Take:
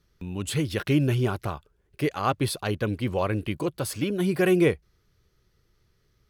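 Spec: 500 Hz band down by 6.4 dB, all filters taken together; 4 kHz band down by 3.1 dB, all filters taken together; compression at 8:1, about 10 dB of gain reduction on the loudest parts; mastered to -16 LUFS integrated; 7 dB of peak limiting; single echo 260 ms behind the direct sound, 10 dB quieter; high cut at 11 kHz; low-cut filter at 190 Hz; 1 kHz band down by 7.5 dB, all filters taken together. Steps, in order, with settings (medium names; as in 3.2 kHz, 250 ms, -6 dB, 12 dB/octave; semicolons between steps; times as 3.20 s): high-pass 190 Hz; low-pass 11 kHz; peaking EQ 500 Hz -7.5 dB; peaking EQ 1 kHz -7.5 dB; peaking EQ 4 kHz -3.5 dB; compression 8:1, threshold -31 dBFS; peak limiter -26.5 dBFS; delay 260 ms -10 dB; trim +22 dB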